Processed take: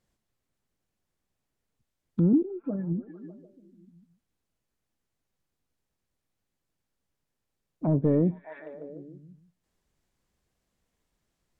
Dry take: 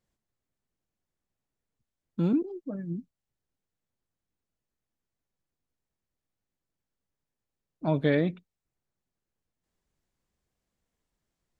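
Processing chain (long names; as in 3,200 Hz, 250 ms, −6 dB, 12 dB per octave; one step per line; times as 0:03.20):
echo through a band-pass that steps 149 ms, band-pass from 3,200 Hz, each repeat −0.7 octaves, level −8.5 dB
gain into a clipping stage and back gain 18.5 dB
treble cut that deepens with the level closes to 450 Hz, closed at −29 dBFS
level +4.5 dB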